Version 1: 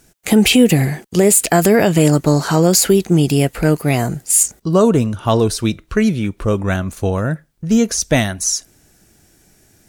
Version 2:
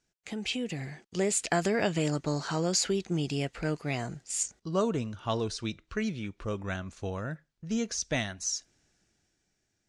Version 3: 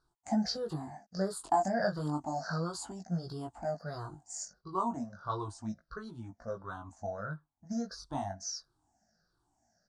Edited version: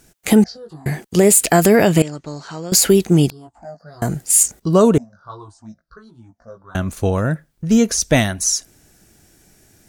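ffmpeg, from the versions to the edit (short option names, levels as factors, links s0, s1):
-filter_complex "[2:a]asplit=3[s0][s1][s2];[0:a]asplit=5[s3][s4][s5][s6][s7];[s3]atrim=end=0.442[s8];[s0]atrim=start=0.438:end=0.862[s9];[s4]atrim=start=0.858:end=2.022[s10];[1:a]atrim=start=2.018:end=2.722[s11];[s5]atrim=start=2.718:end=3.302[s12];[s1]atrim=start=3.298:end=4.022[s13];[s6]atrim=start=4.018:end=4.982[s14];[s2]atrim=start=4.978:end=6.752[s15];[s7]atrim=start=6.748[s16];[s8][s9]acrossfade=d=0.004:c1=hsin:c2=hsin[s17];[s17][s10]acrossfade=d=0.004:c1=hsin:c2=hsin[s18];[s18][s11]acrossfade=d=0.004:c1=hsin:c2=hsin[s19];[s19][s12]acrossfade=d=0.004:c1=hsin:c2=hsin[s20];[s20][s13]acrossfade=d=0.004:c1=hsin:c2=hsin[s21];[s21][s14]acrossfade=d=0.004:c1=hsin:c2=hsin[s22];[s22][s15]acrossfade=d=0.004:c1=hsin:c2=hsin[s23];[s23][s16]acrossfade=d=0.004:c1=hsin:c2=hsin"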